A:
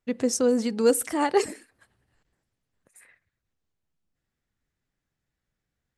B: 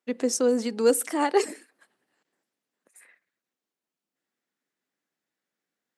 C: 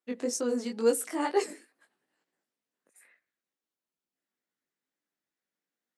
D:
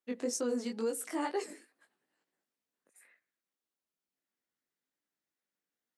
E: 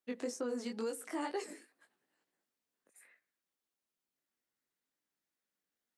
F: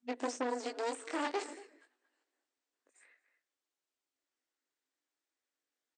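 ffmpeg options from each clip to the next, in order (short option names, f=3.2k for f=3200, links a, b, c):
-af "highpass=f=230:w=0.5412,highpass=f=230:w=1.3066"
-af "flanger=delay=17:depth=4.7:speed=2.2,volume=-2.5dB"
-af "alimiter=limit=-22dB:level=0:latency=1:release=212,volume=-2.5dB"
-filter_complex "[0:a]acrossover=split=700|2100[a][b][c];[a]acompressor=threshold=-37dB:ratio=4[d];[b]acompressor=threshold=-42dB:ratio=4[e];[c]acompressor=threshold=-48dB:ratio=4[f];[d][e][f]amix=inputs=3:normalize=0"
-filter_complex "[0:a]asplit=2[a][b];[b]adelay=230,highpass=300,lowpass=3.4k,asoftclip=type=hard:threshold=-37dB,volume=-12dB[c];[a][c]amix=inputs=2:normalize=0,aeval=exprs='0.0422*(cos(1*acos(clip(val(0)/0.0422,-1,1)))-cos(1*PI/2))+0.0211*(cos(4*acos(clip(val(0)/0.0422,-1,1)))-cos(4*PI/2))':c=same,afftfilt=real='re*between(b*sr/4096,240,8900)':imag='im*between(b*sr/4096,240,8900)':win_size=4096:overlap=0.75"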